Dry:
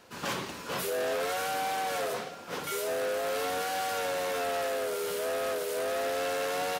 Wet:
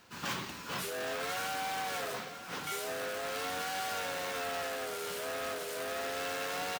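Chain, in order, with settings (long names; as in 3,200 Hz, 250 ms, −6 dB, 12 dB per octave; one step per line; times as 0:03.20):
parametric band 500 Hz −8 dB 1.2 octaves
on a send: single-tap delay 1,054 ms −13 dB
on the sum: bad sample-rate conversion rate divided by 2×, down filtered, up hold
level −1.5 dB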